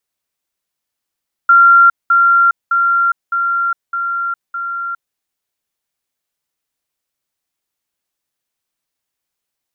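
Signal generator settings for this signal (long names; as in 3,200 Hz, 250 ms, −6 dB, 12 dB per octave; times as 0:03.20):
level staircase 1,380 Hz −4 dBFS, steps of −3 dB, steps 6, 0.41 s 0.20 s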